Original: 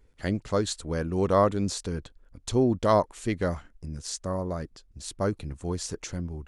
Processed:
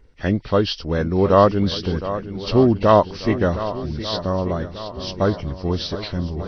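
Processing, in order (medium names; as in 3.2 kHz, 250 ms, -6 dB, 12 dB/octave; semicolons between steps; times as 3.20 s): knee-point frequency compression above 1.8 kHz 1.5:1; shuffle delay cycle 1190 ms, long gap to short 1.5:1, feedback 44%, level -12.5 dB; trim +8 dB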